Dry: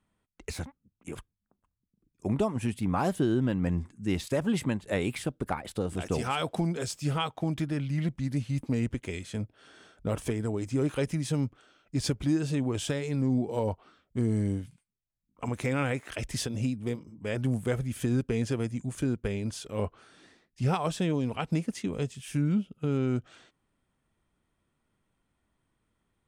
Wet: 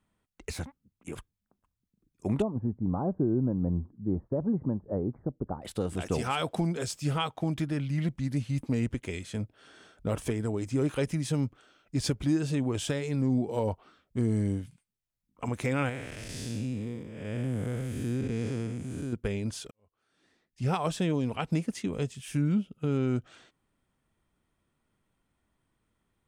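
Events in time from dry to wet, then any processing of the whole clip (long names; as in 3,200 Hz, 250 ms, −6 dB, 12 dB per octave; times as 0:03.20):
0:02.42–0:05.62: Gaussian smoothing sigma 10 samples
0:15.89–0:19.13: spectrum smeared in time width 256 ms
0:19.71–0:20.79: fade in quadratic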